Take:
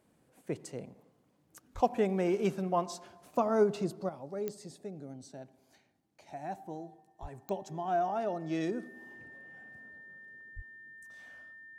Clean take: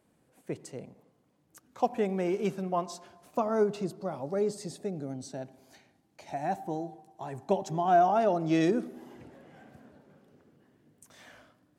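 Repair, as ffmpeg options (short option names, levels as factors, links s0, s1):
-filter_complex "[0:a]adeclick=t=4,bandreject=f=1800:w=30,asplit=3[s0][s1][s2];[s0]afade=t=out:st=1.74:d=0.02[s3];[s1]highpass=f=140:w=0.5412,highpass=f=140:w=1.3066,afade=t=in:st=1.74:d=0.02,afade=t=out:st=1.86:d=0.02[s4];[s2]afade=t=in:st=1.86:d=0.02[s5];[s3][s4][s5]amix=inputs=3:normalize=0,asplit=3[s6][s7][s8];[s6]afade=t=out:st=7.21:d=0.02[s9];[s7]highpass=f=140:w=0.5412,highpass=f=140:w=1.3066,afade=t=in:st=7.21:d=0.02,afade=t=out:st=7.33:d=0.02[s10];[s8]afade=t=in:st=7.33:d=0.02[s11];[s9][s10][s11]amix=inputs=3:normalize=0,asplit=3[s12][s13][s14];[s12]afade=t=out:st=10.55:d=0.02[s15];[s13]highpass=f=140:w=0.5412,highpass=f=140:w=1.3066,afade=t=in:st=10.55:d=0.02,afade=t=out:st=10.67:d=0.02[s16];[s14]afade=t=in:st=10.67:d=0.02[s17];[s15][s16][s17]amix=inputs=3:normalize=0,asetnsamples=n=441:p=0,asendcmd='4.09 volume volume 8dB',volume=1"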